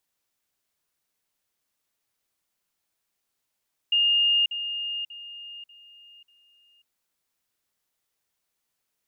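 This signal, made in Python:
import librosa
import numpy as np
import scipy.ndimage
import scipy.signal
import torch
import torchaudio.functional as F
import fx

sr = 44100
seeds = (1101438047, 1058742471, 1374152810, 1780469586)

y = fx.level_ladder(sr, hz=2830.0, from_db=-18.0, step_db=-10.0, steps=5, dwell_s=0.54, gap_s=0.05)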